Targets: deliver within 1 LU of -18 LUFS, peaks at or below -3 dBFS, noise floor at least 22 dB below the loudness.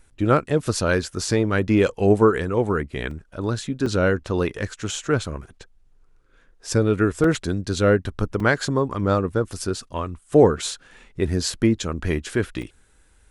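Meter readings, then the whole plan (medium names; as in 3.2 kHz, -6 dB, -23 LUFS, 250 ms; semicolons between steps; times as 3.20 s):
dropouts 5; longest dropout 2.9 ms; loudness -22.5 LUFS; peak level -3.5 dBFS; loudness target -18.0 LUFS
-> interpolate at 3.11/3.86/7.24/8.40/12.62 s, 2.9 ms; trim +4.5 dB; peak limiter -3 dBFS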